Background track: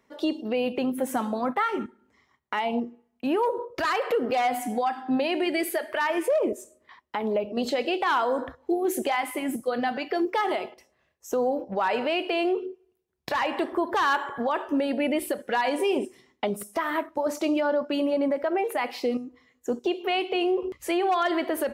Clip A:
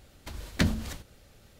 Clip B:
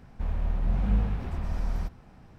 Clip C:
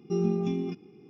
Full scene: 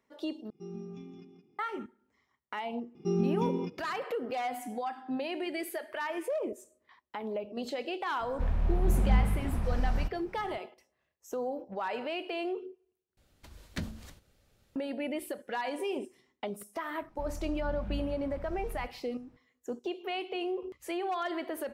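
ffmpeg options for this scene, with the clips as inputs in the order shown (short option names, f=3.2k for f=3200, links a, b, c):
-filter_complex "[3:a]asplit=2[a][b];[2:a]asplit=2[c][d];[0:a]volume=-9.5dB[e];[a]aecho=1:1:169|338|507:0.447|0.0715|0.0114[f];[e]asplit=3[g][h][i];[g]atrim=end=0.504[j];[f]atrim=end=1.09,asetpts=PTS-STARTPTS,volume=-16dB[k];[h]atrim=start=1.586:end=13.174[l];[1:a]atrim=end=1.59,asetpts=PTS-STARTPTS,volume=-11.5dB[m];[i]atrim=start=14.756[n];[b]atrim=end=1.09,asetpts=PTS-STARTPTS,volume=-2dB,afade=t=in:d=0.004:c=hsin,afade=t=out:st=1.086:d=0.004:c=hsin,adelay=2950[o];[c]atrim=end=2.38,asetpts=PTS-STARTPTS,afade=t=in:d=0.004:c=hsin,afade=t=out:st=2.376:d=0.004:c=hsin,adelay=8200[p];[d]atrim=end=2.38,asetpts=PTS-STARTPTS,volume=-12dB,afade=t=in:d=0.004:c=hsin,afade=t=out:st=2.376:d=0.004:c=hsin,adelay=16990[q];[j][k]acrossfade=d=0.004:c1=hsin:c2=hsin[r];[r][l]acrossfade=d=0.004:c1=hsin:c2=hsin[s];[s][m]acrossfade=d=0.004:c1=hsin:c2=hsin[t];[t][n]acrossfade=d=0.004:c1=hsin:c2=hsin[u];[u][o][p][q]amix=inputs=4:normalize=0"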